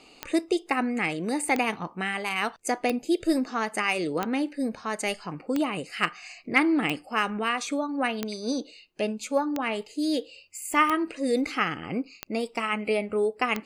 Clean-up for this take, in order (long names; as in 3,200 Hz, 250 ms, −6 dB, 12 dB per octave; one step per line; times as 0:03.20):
clipped peaks rebuilt −9 dBFS
click removal